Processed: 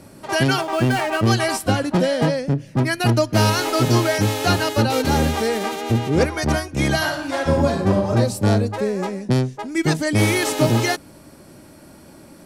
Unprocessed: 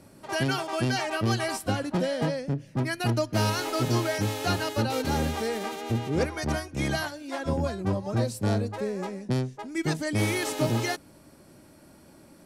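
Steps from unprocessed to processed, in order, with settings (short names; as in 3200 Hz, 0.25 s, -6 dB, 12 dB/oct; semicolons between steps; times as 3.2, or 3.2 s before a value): 0.61–1.27 median filter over 9 samples; 6.96–8.1 reverb throw, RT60 1 s, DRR 2 dB; gain +8.5 dB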